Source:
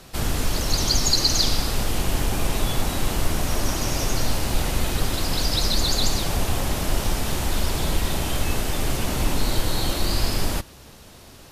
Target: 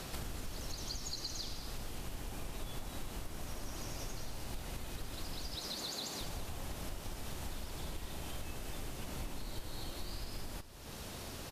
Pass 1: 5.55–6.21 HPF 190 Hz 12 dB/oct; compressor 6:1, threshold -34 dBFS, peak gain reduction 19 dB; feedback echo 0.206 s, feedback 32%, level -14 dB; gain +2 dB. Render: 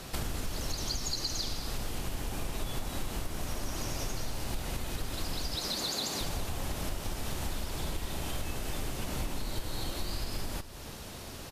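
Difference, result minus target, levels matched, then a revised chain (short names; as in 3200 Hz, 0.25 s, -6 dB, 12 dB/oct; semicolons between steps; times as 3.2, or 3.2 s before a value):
compressor: peak gain reduction -7.5 dB
5.55–6.21 HPF 190 Hz 12 dB/oct; compressor 6:1, threshold -43 dBFS, peak gain reduction 26.5 dB; feedback echo 0.206 s, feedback 32%, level -14 dB; gain +2 dB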